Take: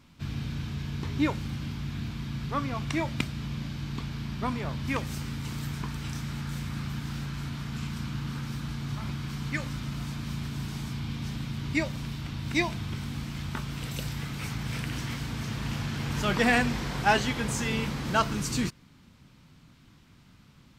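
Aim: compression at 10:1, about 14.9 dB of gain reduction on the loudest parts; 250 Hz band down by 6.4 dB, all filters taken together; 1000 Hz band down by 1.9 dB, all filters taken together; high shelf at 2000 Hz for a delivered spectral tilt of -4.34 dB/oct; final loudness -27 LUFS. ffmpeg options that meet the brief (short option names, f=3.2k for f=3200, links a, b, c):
-af "equalizer=f=250:t=o:g=-9,equalizer=f=1k:t=o:g=-3.5,highshelf=f=2k:g=6,acompressor=threshold=-34dB:ratio=10,volume=11dB"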